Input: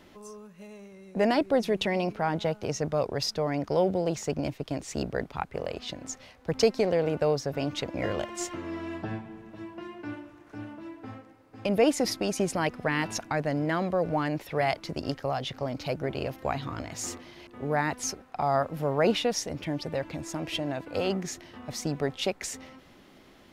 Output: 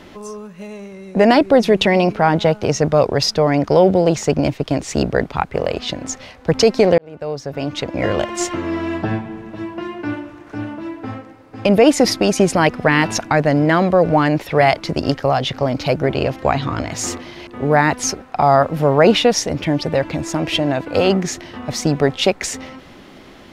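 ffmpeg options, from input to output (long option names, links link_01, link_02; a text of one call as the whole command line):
ffmpeg -i in.wav -filter_complex "[0:a]asettb=1/sr,asplit=3[link_01][link_02][link_03];[link_01]atrim=end=16.154[link_04];[link_02]atrim=start=16.15:end=16.87,asetpts=PTS-STARTPTS,afade=type=in:duration=0.004:curve=qsin,afade=type=out:start_time=0.716:duration=0.004:curve=qsin,lowpass=9500[link_05];[link_03]atrim=start=16.866[link_06];[link_04][link_05]acrossfade=duration=0.004:curve1=hsin:curve2=qsin[link_07];[link_07][link_06]acrossfade=duration=0.004:curve1=qsin:curve2=hsin,asplit=2[link_08][link_09];[link_08]atrim=end=6.98,asetpts=PTS-STARTPTS,afade=type=out:start_time=6.976:duration=0.004:curve=hsin[link_10];[link_09]atrim=start=6.98,asetpts=PTS-STARTPTS,afade=type=in:duration=1.41[link_11];[link_10][link_11]concat=n=2:v=0:a=1,highshelf=frequency=10000:gain=-9.5,alimiter=level_in=14.5dB:limit=-1dB:release=50:level=0:latency=1,volume=-1dB" out.wav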